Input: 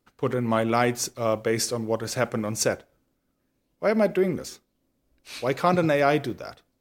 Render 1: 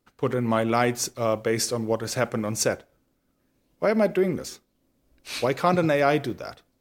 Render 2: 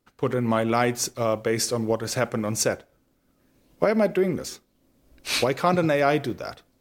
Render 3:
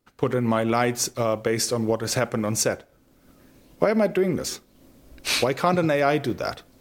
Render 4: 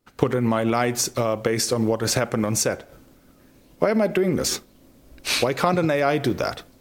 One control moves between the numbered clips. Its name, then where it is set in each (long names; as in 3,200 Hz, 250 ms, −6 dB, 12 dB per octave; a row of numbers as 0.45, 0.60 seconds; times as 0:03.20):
camcorder AGC, rising by: 5.2, 13, 34, 91 dB per second